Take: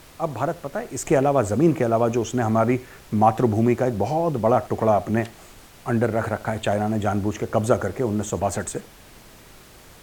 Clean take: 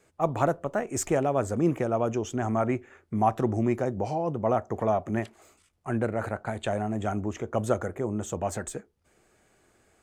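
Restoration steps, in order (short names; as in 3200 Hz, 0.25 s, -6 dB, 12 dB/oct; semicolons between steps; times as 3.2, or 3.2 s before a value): noise print and reduce 18 dB; inverse comb 81 ms -21.5 dB; gain 0 dB, from 1.05 s -6.5 dB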